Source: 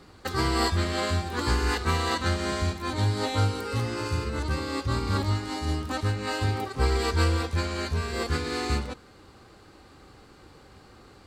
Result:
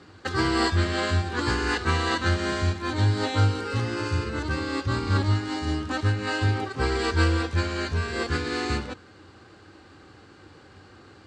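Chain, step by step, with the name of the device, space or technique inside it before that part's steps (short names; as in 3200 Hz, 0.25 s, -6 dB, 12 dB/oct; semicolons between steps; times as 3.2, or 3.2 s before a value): car door speaker (speaker cabinet 84–8000 Hz, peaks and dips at 93 Hz +8 dB, 320 Hz +5 dB, 1600 Hz +6 dB, 2900 Hz +3 dB)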